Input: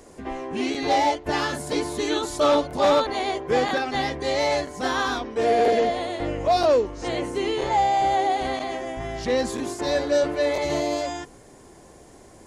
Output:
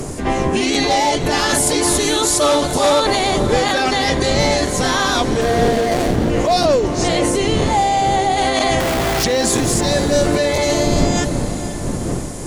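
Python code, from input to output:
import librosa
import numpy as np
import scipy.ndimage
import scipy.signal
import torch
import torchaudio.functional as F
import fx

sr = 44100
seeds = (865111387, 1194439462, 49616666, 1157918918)

p1 = fx.median_filter(x, sr, points=41, at=(5.41, 6.3))
p2 = fx.dmg_wind(p1, sr, seeds[0], corner_hz=270.0, level_db=-29.0)
p3 = fx.peak_eq(p2, sr, hz=9600.0, db=10.5, octaves=2.1)
p4 = fx.hum_notches(p3, sr, base_hz=50, count=5)
p5 = fx.over_compress(p4, sr, threshold_db=-28.0, ratio=-0.5)
p6 = p4 + (p5 * librosa.db_to_amplitude(0.5))
p7 = fx.schmitt(p6, sr, flips_db=-27.5, at=(8.8, 9.24))
p8 = p7 + fx.echo_diffused(p7, sr, ms=490, feedback_pct=46, wet_db=-12.0, dry=0)
y = p8 * librosa.db_to_amplitude(3.0)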